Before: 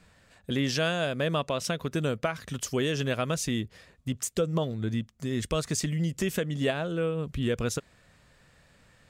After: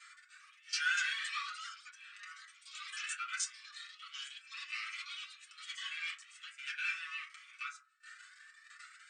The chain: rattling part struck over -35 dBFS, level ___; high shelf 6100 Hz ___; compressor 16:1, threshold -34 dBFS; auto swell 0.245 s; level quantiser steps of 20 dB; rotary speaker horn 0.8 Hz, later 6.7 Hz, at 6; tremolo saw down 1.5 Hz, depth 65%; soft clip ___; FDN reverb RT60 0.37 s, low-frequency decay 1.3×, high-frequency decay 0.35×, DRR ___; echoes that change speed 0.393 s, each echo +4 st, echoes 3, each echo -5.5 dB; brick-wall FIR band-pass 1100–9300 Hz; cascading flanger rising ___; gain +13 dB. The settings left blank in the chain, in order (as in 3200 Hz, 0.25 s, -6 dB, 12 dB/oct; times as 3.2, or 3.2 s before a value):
-24 dBFS, +2.5 dB, -39.5 dBFS, -7.5 dB, 0.41 Hz